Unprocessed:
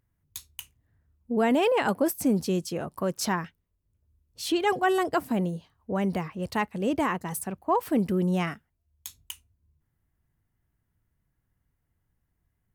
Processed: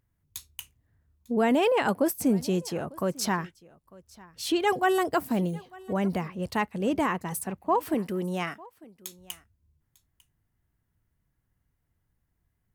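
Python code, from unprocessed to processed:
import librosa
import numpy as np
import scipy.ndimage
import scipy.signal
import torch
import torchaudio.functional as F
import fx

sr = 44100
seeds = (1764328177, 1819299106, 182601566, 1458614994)

y = fx.high_shelf(x, sr, hz=12000.0, db=9.0, at=(4.64, 5.99))
y = fx.highpass(y, sr, hz=360.0, slope=6, at=(7.94, 9.19))
y = y + 10.0 ** (-23.0 / 20.0) * np.pad(y, (int(899 * sr / 1000.0), 0))[:len(y)]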